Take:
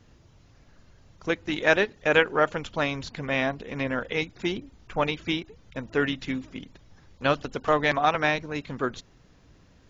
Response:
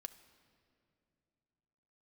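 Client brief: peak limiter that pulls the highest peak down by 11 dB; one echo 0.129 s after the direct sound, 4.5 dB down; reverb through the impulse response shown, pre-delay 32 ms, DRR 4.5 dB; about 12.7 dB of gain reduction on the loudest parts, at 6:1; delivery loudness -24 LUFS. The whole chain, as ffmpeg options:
-filter_complex "[0:a]acompressor=threshold=-30dB:ratio=6,alimiter=level_in=5dB:limit=-24dB:level=0:latency=1,volume=-5dB,aecho=1:1:129:0.596,asplit=2[a][b];[1:a]atrim=start_sample=2205,adelay=32[c];[b][c]afir=irnorm=-1:irlink=0,volume=0.5dB[d];[a][d]amix=inputs=2:normalize=0,volume=14.5dB"

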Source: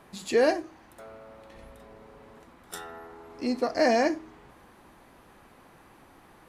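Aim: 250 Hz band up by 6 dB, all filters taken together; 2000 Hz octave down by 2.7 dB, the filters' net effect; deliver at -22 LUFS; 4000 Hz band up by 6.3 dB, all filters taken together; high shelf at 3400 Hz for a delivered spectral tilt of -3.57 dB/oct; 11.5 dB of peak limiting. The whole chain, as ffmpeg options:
-af "equalizer=f=250:t=o:g=7,equalizer=f=2k:t=o:g=-6,highshelf=f=3.4k:g=7,equalizer=f=4k:t=o:g=3.5,volume=10.5dB,alimiter=limit=-11dB:level=0:latency=1"

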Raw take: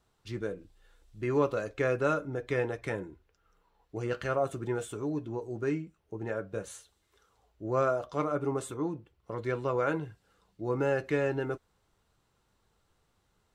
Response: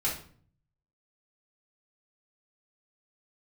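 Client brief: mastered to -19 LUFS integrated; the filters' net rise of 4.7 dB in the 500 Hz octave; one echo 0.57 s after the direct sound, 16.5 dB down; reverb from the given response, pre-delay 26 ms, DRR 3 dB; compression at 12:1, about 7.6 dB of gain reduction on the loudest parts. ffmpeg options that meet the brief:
-filter_complex "[0:a]equalizer=f=500:t=o:g=5.5,acompressor=threshold=-26dB:ratio=12,aecho=1:1:570:0.15,asplit=2[a][b];[1:a]atrim=start_sample=2205,adelay=26[c];[b][c]afir=irnorm=-1:irlink=0,volume=-10dB[d];[a][d]amix=inputs=2:normalize=0,volume=13dB"

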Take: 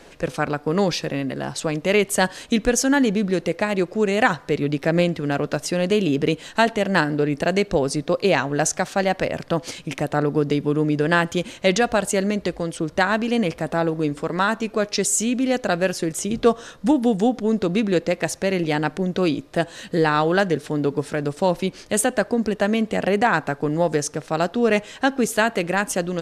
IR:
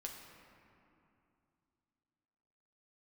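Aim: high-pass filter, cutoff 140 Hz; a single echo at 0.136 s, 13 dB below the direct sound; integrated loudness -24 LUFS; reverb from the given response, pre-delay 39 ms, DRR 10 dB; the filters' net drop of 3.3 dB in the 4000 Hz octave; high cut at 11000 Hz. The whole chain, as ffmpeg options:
-filter_complex "[0:a]highpass=140,lowpass=11k,equalizer=f=4k:t=o:g=-4.5,aecho=1:1:136:0.224,asplit=2[a][b];[1:a]atrim=start_sample=2205,adelay=39[c];[b][c]afir=irnorm=-1:irlink=0,volume=-7.5dB[d];[a][d]amix=inputs=2:normalize=0,volume=-2.5dB"

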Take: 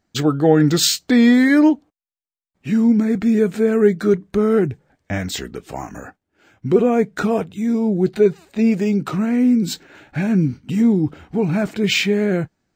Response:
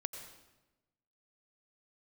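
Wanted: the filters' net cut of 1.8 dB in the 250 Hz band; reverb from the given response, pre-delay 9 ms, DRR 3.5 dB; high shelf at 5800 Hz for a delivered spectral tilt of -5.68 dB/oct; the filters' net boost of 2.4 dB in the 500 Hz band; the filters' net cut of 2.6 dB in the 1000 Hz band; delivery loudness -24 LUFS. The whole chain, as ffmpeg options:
-filter_complex "[0:a]equalizer=f=250:t=o:g=-3,equalizer=f=500:t=o:g=5,equalizer=f=1k:t=o:g=-6,highshelf=f=5.8k:g=-6.5,asplit=2[a][b];[1:a]atrim=start_sample=2205,adelay=9[c];[b][c]afir=irnorm=-1:irlink=0,volume=-3dB[d];[a][d]amix=inputs=2:normalize=0,volume=-8dB"

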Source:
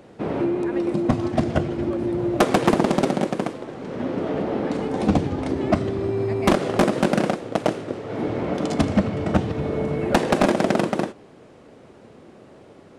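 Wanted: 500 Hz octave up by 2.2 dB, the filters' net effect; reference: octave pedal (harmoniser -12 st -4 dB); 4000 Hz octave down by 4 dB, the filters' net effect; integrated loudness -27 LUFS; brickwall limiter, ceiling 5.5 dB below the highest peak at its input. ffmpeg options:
-filter_complex "[0:a]equalizer=f=500:t=o:g=3,equalizer=f=4k:t=o:g=-5.5,alimiter=limit=-12dB:level=0:latency=1,asplit=2[a][b];[b]asetrate=22050,aresample=44100,atempo=2,volume=-4dB[c];[a][c]amix=inputs=2:normalize=0,volume=-4.5dB"

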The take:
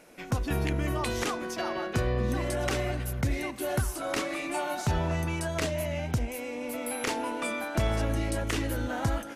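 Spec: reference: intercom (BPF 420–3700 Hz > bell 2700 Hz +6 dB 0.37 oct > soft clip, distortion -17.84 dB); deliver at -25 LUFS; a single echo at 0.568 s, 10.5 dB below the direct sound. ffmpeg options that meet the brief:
-af "highpass=420,lowpass=3.7k,equalizer=f=2.7k:t=o:w=0.37:g=6,aecho=1:1:568:0.299,asoftclip=threshold=-24.5dB,volume=9.5dB"

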